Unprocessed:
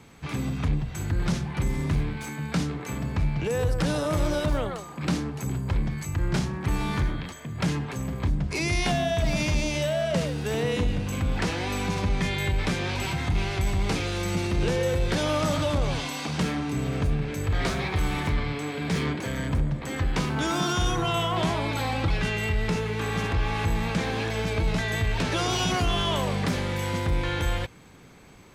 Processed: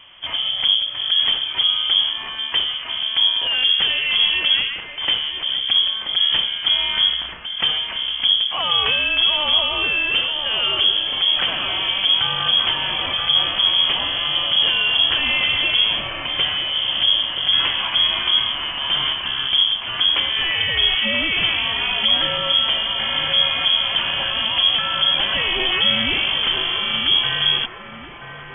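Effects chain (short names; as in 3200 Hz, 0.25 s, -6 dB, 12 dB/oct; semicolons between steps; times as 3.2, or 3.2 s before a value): thin delay 0.98 s, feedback 53%, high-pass 1500 Hz, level -7 dB; inverted band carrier 3300 Hz; gain +5.5 dB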